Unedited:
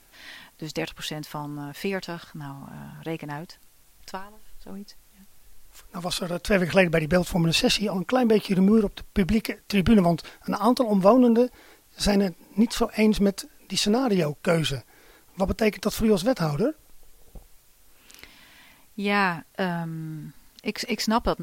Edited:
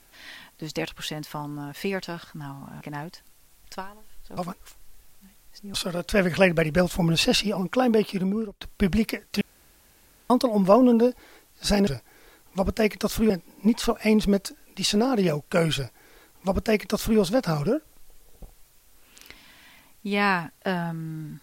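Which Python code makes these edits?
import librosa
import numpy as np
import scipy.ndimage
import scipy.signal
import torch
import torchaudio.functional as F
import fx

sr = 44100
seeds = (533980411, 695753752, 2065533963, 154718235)

y = fx.edit(x, sr, fx.cut(start_s=2.81, length_s=0.36),
    fx.reverse_span(start_s=4.73, length_s=1.37),
    fx.fade_out_to(start_s=8.24, length_s=0.73, floor_db=-24.0),
    fx.room_tone_fill(start_s=9.77, length_s=0.89),
    fx.duplicate(start_s=14.69, length_s=1.43, to_s=12.23), tone=tone)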